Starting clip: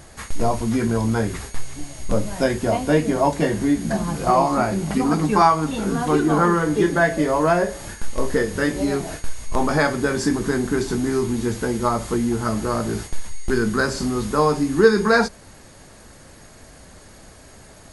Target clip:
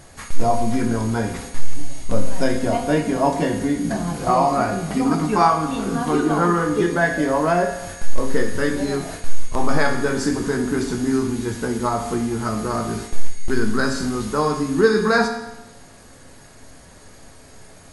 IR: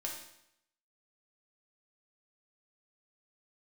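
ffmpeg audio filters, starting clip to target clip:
-filter_complex "[0:a]asplit=2[a][b];[1:a]atrim=start_sample=2205,asetrate=34398,aresample=44100[c];[b][c]afir=irnorm=-1:irlink=0,volume=0dB[d];[a][d]amix=inputs=2:normalize=0,volume=-6.5dB"

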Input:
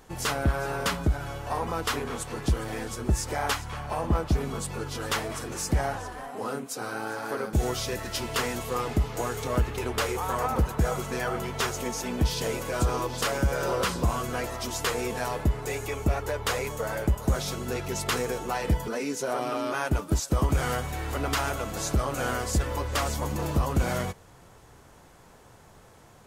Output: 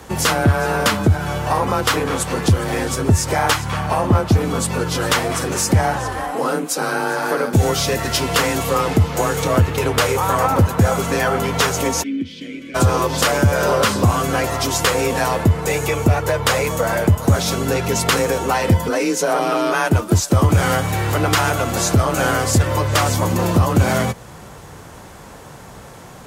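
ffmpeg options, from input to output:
-filter_complex "[0:a]asplit=2[a][b];[b]acompressor=threshold=-33dB:ratio=6,volume=2dB[c];[a][c]amix=inputs=2:normalize=0,afreqshift=29,asplit=3[d][e][f];[d]afade=t=out:st=12.02:d=0.02[g];[e]asplit=3[h][i][j];[h]bandpass=f=270:t=q:w=8,volume=0dB[k];[i]bandpass=f=2.29k:t=q:w=8,volume=-6dB[l];[j]bandpass=f=3.01k:t=q:w=8,volume=-9dB[m];[k][l][m]amix=inputs=3:normalize=0,afade=t=in:st=12.02:d=0.02,afade=t=out:st=12.74:d=0.02[n];[f]afade=t=in:st=12.74:d=0.02[o];[g][n][o]amix=inputs=3:normalize=0,volume=7.5dB"

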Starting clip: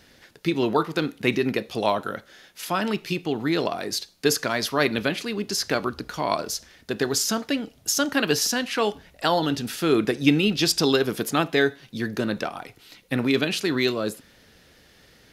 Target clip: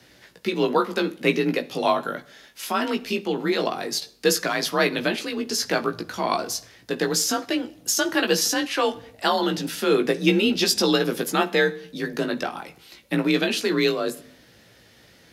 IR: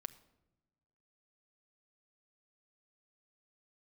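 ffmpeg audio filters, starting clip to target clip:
-filter_complex "[0:a]afreqshift=39,asplit=2[a][b];[1:a]atrim=start_sample=2205,afade=t=out:st=0.34:d=0.01,atrim=end_sample=15435,adelay=17[c];[b][c]afir=irnorm=-1:irlink=0,volume=-1.5dB[d];[a][d]amix=inputs=2:normalize=0"

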